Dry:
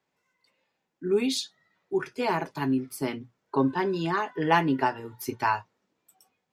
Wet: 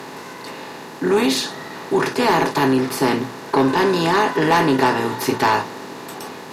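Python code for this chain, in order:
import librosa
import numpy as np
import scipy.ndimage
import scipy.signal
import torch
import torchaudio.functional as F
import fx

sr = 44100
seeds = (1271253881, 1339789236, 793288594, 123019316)

y = fx.bin_compress(x, sr, power=0.4)
y = fx.cheby_harmonics(y, sr, harmonics=(5,), levels_db=(-15,), full_scale_db=-4.0)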